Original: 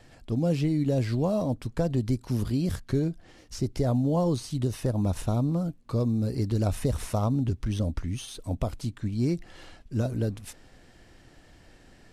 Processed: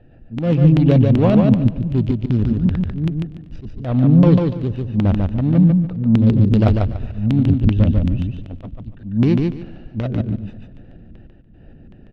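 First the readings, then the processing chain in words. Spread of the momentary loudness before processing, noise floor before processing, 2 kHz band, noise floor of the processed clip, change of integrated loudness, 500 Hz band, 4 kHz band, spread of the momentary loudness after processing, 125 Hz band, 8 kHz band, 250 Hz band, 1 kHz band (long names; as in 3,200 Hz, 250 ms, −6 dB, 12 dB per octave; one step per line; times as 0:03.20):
8 LU, −55 dBFS, +8.5 dB, −45 dBFS, +12.0 dB, +7.0 dB, can't be measured, 18 LU, +12.0 dB, below −10 dB, +12.5 dB, +6.0 dB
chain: adaptive Wiener filter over 41 samples
Butterworth low-pass 8,500 Hz
automatic gain control gain up to 5 dB
auto-filter low-pass square 2.6 Hz 210–3,000 Hz
in parallel at −11 dB: soft clipping −19 dBFS, distortion −11 dB
on the sum: volume swells 242 ms
on a send: repeating echo 145 ms, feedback 22%, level −3.5 dB
on the sum: feedback echo with a swinging delay time 121 ms, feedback 70%, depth 78 cents, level −23.5 dB
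level +4.5 dB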